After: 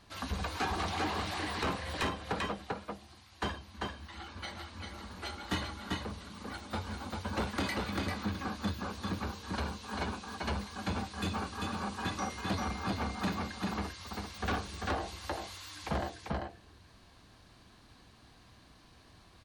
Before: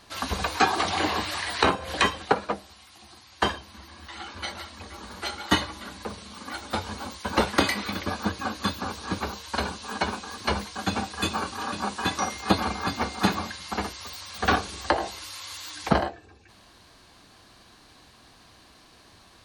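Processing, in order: tone controls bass +7 dB, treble -3 dB; echo 0.393 s -4.5 dB; soft clip -19.5 dBFS, distortion -9 dB; gain -8 dB

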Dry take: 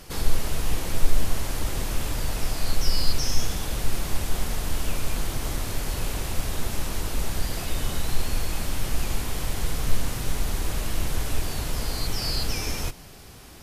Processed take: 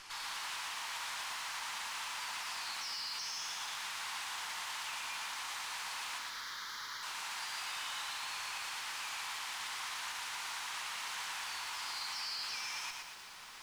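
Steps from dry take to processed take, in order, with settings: Chebyshev high-pass 910 Hz, order 4; limiter -30 dBFS, peak gain reduction 9 dB; 6.18–7.03 fixed phaser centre 2600 Hz, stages 6; soft clip -33.5 dBFS, distortion -19 dB; added harmonics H 8 -21 dB, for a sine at -34 dBFS; air absorption 65 m; lo-fi delay 0.116 s, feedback 55%, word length 10-bit, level -3 dB; gain +1 dB

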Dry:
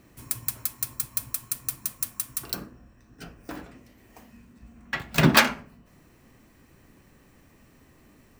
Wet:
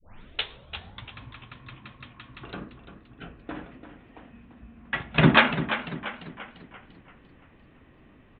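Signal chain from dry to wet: tape start at the beginning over 1.18 s; downsampling 8000 Hz; warbling echo 0.343 s, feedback 46%, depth 67 cents, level -11 dB; gain +1 dB

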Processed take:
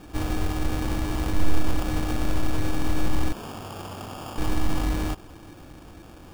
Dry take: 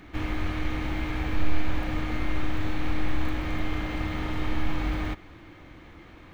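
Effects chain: 3.32–4.38 HPF 1100 Hz 12 dB/oct; sample-and-hold 22×; gain +3 dB

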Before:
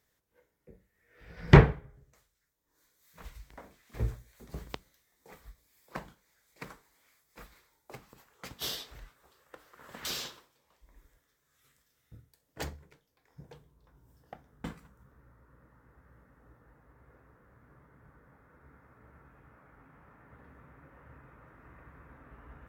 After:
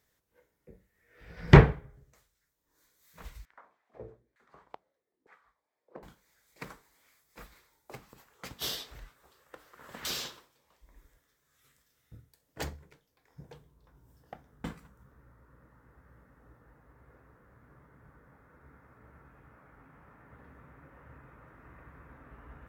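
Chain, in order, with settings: 3.45–6.03 LFO band-pass saw down 1.1 Hz 280–1700 Hz; gain +1 dB

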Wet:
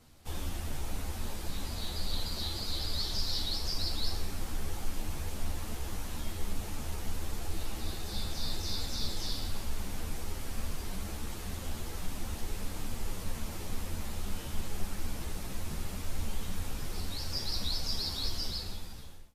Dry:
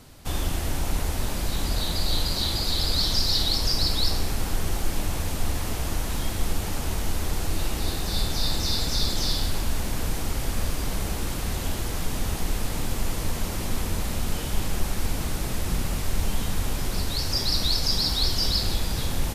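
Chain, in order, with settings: ending faded out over 1.06 s; ensemble effect; gain -7.5 dB

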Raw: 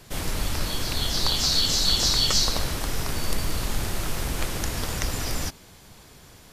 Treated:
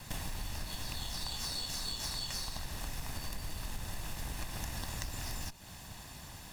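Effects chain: minimum comb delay 1.1 ms; compressor 8:1, threshold -38 dBFS, peak gain reduction 19 dB; gain +2 dB

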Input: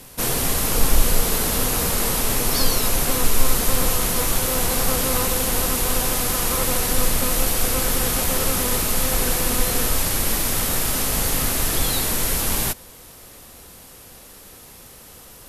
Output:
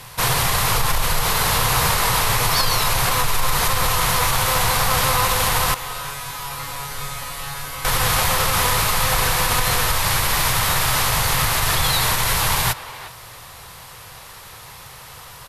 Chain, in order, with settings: 5.74–7.85 resonator 140 Hz, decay 0.59 s, harmonics all, mix 90%; limiter -11.5 dBFS, peak gain reduction 9 dB; graphic EQ 125/250/1000/2000/4000 Hz +12/-12/+11/+6/+6 dB; speakerphone echo 0.36 s, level -13 dB

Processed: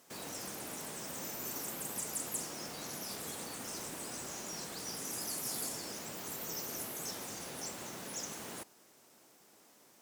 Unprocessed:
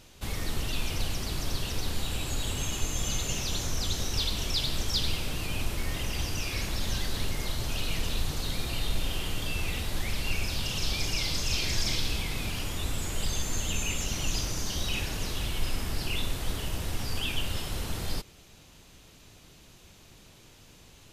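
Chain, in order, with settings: HPF 140 Hz 12 dB/oct; wide varispeed 2.11×; gain -7 dB

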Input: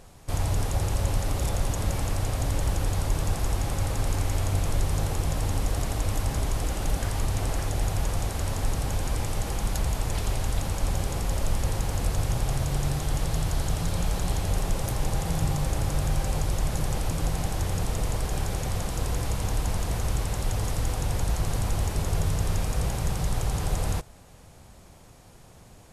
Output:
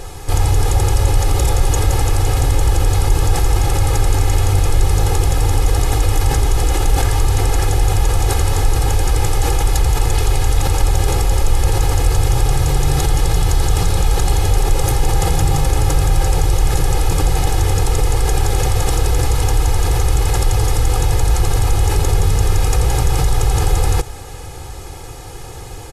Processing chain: comb 2.4 ms, depth 90%; in parallel at -1.5 dB: negative-ratio compressor -30 dBFS; on the sum: gain +6 dB

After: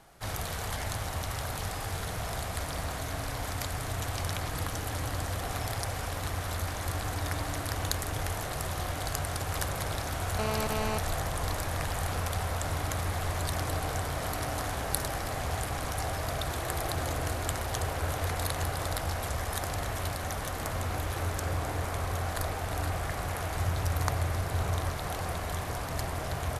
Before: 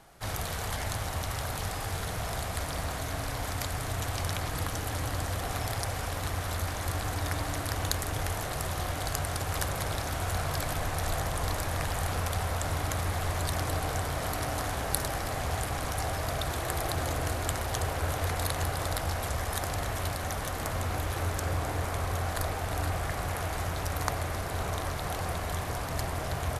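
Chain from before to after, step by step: 10.39–10.98 GSM buzz -32 dBFS; 23.55–24.9 bell 98 Hz +7 dB 0.99 oct; gain -1 dB

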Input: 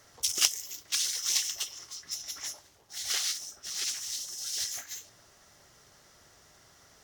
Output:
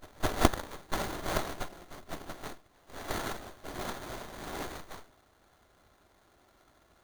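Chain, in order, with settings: FFT order left unsorted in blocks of 256 samples; pre-echo 0.211 s -21.5 dB; running maximum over 17 samples

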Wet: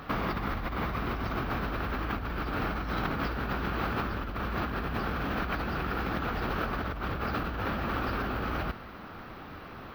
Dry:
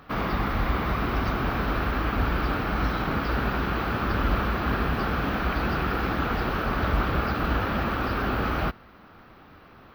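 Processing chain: negative-ratio compressor -32 dBFS, ratio -1

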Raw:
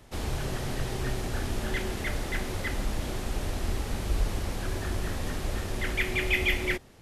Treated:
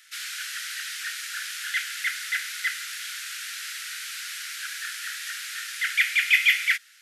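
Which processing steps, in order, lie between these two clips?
Chebyshev high-pass 1400 Hz, order 6; gain +8.5 dB

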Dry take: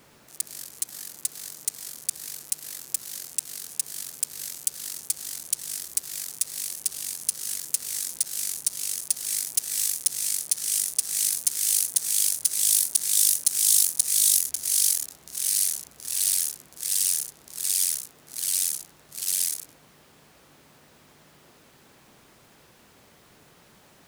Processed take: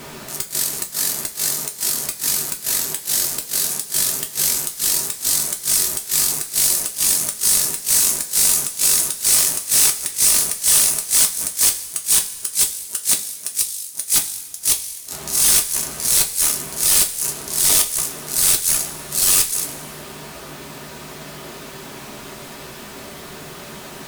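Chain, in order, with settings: flipped gate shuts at -10 dBFS, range -30 dB; sine folder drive 17 dB, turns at -7 dBFS; two-slope reverb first 0.22 s, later 1.8 s, from -18 dB, DRR 1.5 dB; gain -3 dB

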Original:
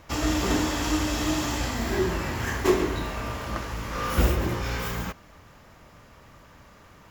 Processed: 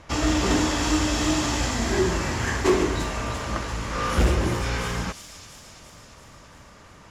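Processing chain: LPF 10000 Hz 24 dB/oct; overloaded stage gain 17 dB; on a send: thin delay 0.342 s, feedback 63%, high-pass 4900 Hz, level -3.5 dB; on the sum: gain +3 dB

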